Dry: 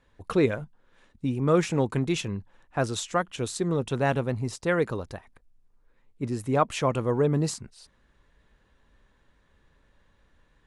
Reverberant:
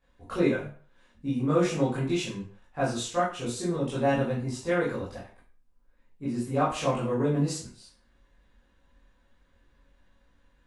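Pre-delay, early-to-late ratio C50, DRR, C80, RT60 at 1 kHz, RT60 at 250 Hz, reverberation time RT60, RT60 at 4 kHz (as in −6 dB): 14 ms, 4.0 dB, −9.5 dB, 9.5 dB, 0.45 s, 0.40 s, 0.45 s, 0.35 s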